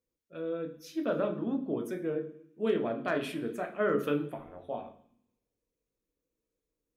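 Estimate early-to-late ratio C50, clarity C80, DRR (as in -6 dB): 12.0 dB, 15.5 dB, 4.0 dB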